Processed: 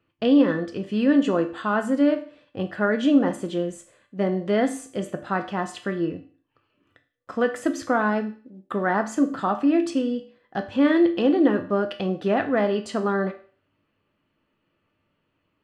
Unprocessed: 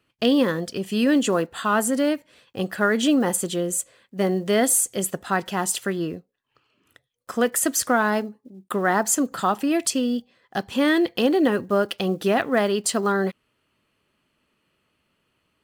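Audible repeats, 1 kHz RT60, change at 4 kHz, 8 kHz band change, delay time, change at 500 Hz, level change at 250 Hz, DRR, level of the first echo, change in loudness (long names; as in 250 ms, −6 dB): no echo audible, 0.45 s, −8.0 dB, −19.5 dB, no echo audible, −1.0 dB, +1.5 dB, 5.0 dB, no echo audible, −1.0 dB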